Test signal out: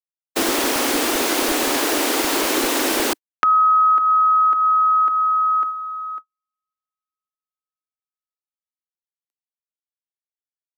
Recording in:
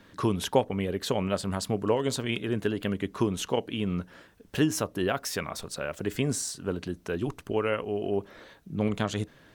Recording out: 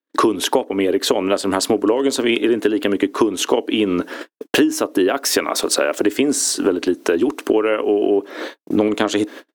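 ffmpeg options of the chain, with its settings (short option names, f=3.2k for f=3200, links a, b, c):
-filter_complex "[0:a]lowshelf=f=210:t=q:w=3:g=-11.5,agate=range=-60dB:threshold=-47dB:ratio=16:detection=peak,acrossover=split=200[a][b];[a]aeval=exprs='sgn(val(0))*max(abs(val(0))-0.002,0)':c=same[c];[c][b]amix=inputs=2:normalize=0,acompressor=threshold=-38dB:ratio=8,alimiter=level_in=25dB:limit=-1dB:release=50:level=0:latency=1,volume=-1dB"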